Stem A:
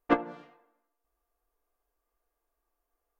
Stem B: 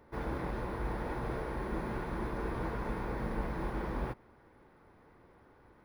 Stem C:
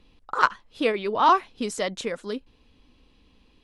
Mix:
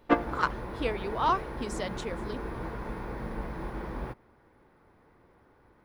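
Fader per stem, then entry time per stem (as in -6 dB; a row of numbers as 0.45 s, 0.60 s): +1.0 dB, -0.5 dB, -8.0 dB; 0.00 s, 0.00 s, 0.00 s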